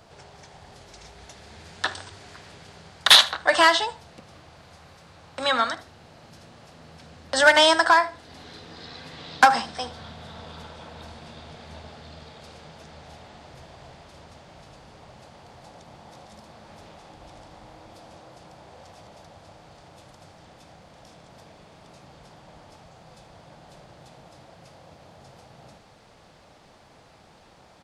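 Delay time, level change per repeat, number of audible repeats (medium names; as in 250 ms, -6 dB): 76 ms, -11.5 dB, 2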